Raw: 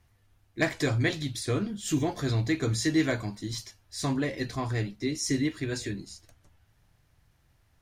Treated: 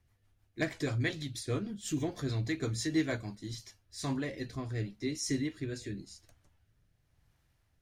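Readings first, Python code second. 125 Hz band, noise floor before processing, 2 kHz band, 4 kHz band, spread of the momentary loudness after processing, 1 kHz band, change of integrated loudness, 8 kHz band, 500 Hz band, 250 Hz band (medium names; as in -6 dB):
-6.0 dB, -67 dBFS, -7.0 dB, -6.5 dB, 12 LU, -8.5 dB, -6.0 dB, -6.0 dB, -6.0 dB, -6.0 dB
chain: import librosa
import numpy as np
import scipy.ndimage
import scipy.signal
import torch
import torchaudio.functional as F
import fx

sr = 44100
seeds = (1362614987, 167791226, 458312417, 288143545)

y = fx.rotary_switch(x, sr, hz=6.3, then_hz=0.9, switch_at_s=3.22)
y = y * librosa.db_to_amplitude(-4.5)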